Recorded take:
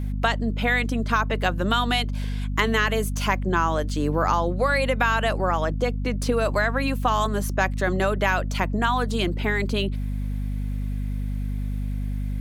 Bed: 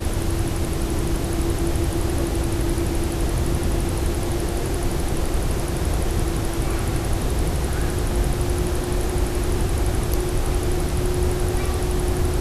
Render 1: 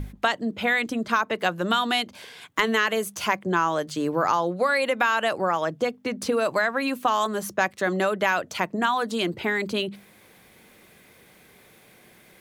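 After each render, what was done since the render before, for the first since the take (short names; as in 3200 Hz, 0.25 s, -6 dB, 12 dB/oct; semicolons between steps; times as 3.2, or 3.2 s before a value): notches 50/100/150/200/250 Hz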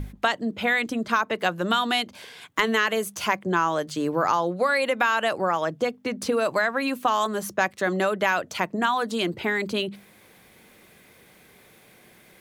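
nothing audible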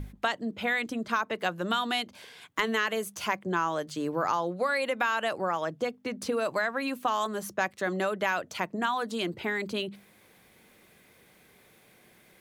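gain -5.5 dB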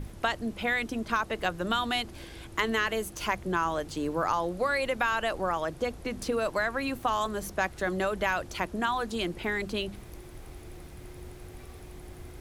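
add bed -23.5 dB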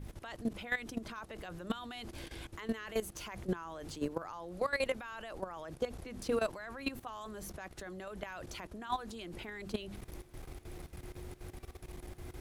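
limiter -22 dBFS, peak gain reduction 9.5 dB; level quantiser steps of 15 dB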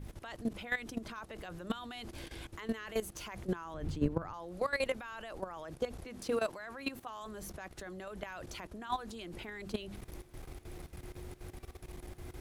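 3.74–4.34 tone controls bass +13 dB, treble -8 dB; 6.05–7.22 low shelf 94 Hz -11 dB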